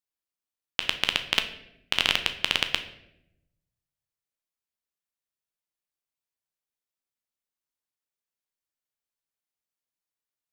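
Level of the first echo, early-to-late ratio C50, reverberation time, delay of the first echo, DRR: no echo, 11.0 dB, 0.80 s, no echo, 7.0 dB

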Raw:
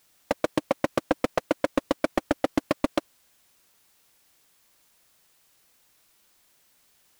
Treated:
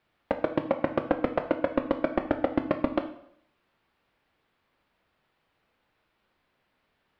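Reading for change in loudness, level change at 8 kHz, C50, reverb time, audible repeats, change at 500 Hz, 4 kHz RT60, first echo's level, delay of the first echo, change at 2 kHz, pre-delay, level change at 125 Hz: -0.5 dB, under -25 dB, 11.0 dB, 0.70 s, no echo, -0.5 dB, 0.60 s, no echo, no echo, -3.0 dB, 5 ms, +0.5 dB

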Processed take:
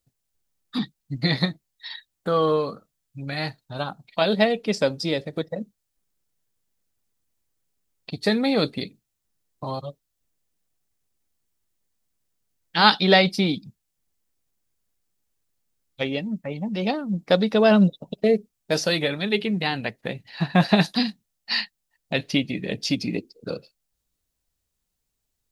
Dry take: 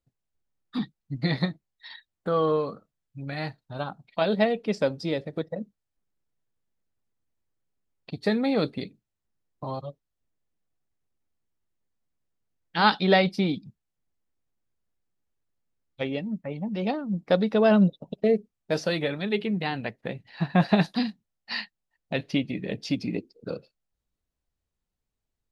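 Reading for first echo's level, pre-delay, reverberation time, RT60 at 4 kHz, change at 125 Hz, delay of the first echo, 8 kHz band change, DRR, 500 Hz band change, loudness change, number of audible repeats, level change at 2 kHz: no echo, no reverb, no reverb, no reverb, +2.5 dB, no echo, no reading, no reverb, +2.5 dB, +3.5 dB, no echo, +5.0 dB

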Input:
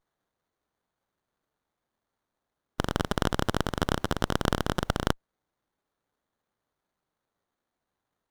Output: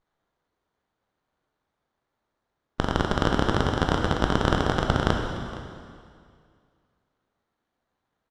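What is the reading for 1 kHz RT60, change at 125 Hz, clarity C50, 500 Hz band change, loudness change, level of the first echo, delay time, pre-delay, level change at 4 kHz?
2.2 s, +5.0 dB, 3.5 dB, +5.0 dB, +4.5 dB, -18.0 dB, 464 ms, 7 ms, +3.0 dB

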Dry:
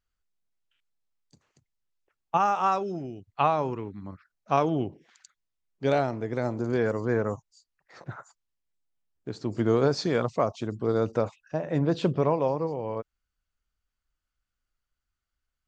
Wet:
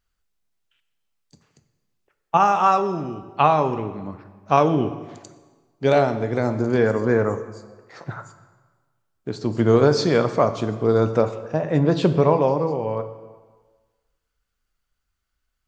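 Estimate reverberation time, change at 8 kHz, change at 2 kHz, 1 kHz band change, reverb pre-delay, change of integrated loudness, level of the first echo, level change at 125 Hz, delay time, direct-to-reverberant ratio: 1.4 s, no reading, +7.0 dB, +7.0 dB, 3 ms, +7.0 dB, no echo, +7.5 dB, no echo, 9.0 dB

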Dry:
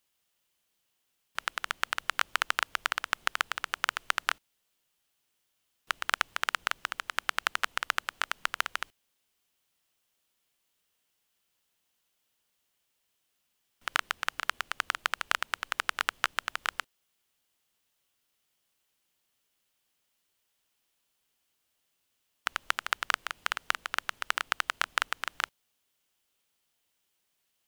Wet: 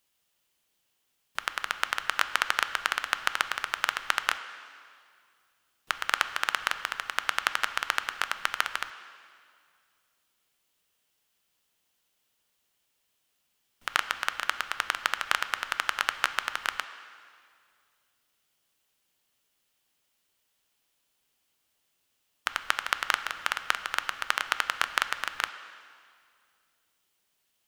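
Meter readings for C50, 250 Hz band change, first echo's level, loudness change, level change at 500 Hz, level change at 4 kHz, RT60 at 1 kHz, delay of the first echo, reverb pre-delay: 11.5 dB, +2.5 dB, no echo, +2.5 dB, +2.5 dB, +2.5 dB, 2.1 s, no echo, 4 ms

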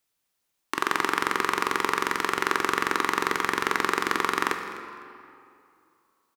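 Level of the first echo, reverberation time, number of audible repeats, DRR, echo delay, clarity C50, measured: -17.5 dB, 2.5 s, 1, 5.0 dB, 253 ms, 6.5 dB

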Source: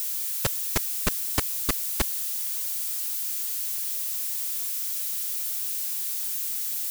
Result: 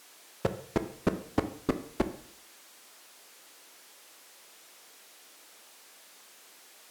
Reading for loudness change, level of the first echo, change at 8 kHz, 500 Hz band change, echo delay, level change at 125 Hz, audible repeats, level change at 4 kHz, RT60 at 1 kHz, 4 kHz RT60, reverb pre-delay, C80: -8.5 dB, no echo, -22.0 dB, +5.0 dB, no echo, -1.5 dB, no echo, -15.0 dB, 0.60 s, 0.60 s, 11 ms, 16.0 dB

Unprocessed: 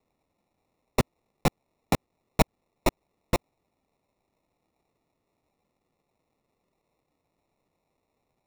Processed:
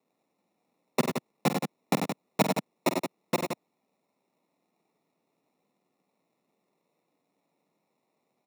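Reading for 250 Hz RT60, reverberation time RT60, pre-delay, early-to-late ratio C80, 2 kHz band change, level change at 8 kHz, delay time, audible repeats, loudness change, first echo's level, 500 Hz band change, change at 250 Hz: no reverb, no reverb, no reverb, no reverb, 0.0 dB, 0.0 dB, 48 ms, 3, -0.5 dB, -9.5 dB, +0.5 dB, +1.5 dB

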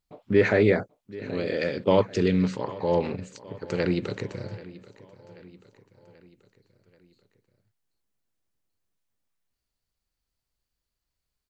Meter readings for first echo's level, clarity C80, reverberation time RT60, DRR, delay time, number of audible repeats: -19.0 dB, no reverb, no reverb, no reverb, 784 ms, 3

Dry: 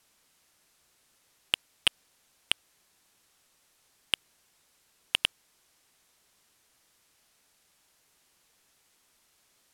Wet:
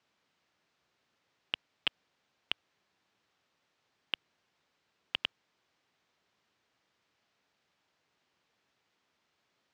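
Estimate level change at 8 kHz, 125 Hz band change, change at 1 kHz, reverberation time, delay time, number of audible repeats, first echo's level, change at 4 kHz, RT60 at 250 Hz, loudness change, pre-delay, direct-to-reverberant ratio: under -25 dB, -5.5 dB, -5.0 dB, no reverb, no echo, no echo, no echo, -7.5 dB, no reverb, -7.5 dB, no reverb, no reverb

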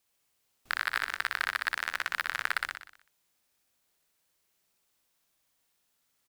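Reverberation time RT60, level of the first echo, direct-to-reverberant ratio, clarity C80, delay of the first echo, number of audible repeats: no reverb, -3.0 dB, no reverb, no reverb, 61 ms, 6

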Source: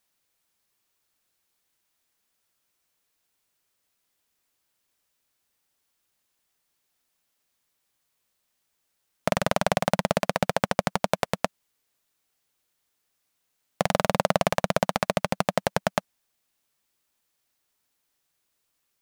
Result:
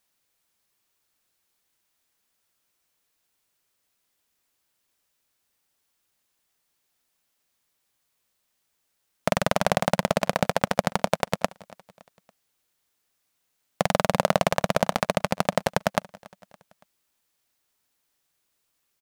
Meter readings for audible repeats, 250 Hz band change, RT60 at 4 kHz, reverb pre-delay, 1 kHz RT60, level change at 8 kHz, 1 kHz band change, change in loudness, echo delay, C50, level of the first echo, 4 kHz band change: 3, +1.0 dB, no reverb, no reverb, no reverb, +1.0 dB, +1.0 dB, +1.0 dB, 282 ms, no reverb, -23.0 dB, +1.0 dB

